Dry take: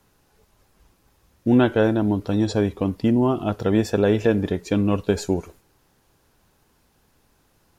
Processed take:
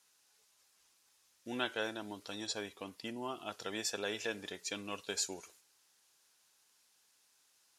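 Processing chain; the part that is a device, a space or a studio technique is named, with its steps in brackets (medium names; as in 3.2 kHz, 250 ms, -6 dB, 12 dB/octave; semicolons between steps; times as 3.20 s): 2.47–3.51 s: peaking EQ 5.9 kHz -3.5 dB 1.6 oct; piezo pickup straight into a mixer (low-pass 7.7 kHz 12 dB/octave; differentiator); trim +3 dB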